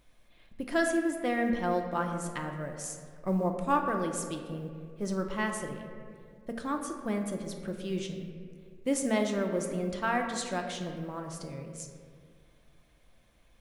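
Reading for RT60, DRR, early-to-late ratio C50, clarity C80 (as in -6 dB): 2.1 s, 3.0 dB, 5.5 dB, 7.0 dB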